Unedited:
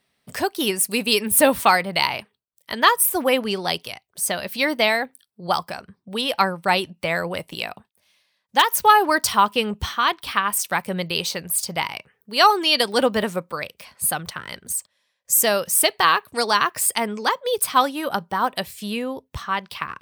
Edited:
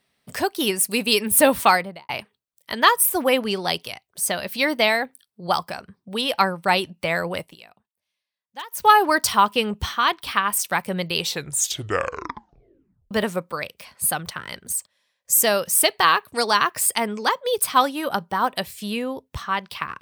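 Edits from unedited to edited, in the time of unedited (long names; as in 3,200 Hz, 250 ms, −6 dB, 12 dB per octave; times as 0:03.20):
0:01.70–0:02.09: fade out and dull
0:07.39–0:08.89: duck −18.5 dB, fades 0.18 s
0:11.17: tape stop 1.94 s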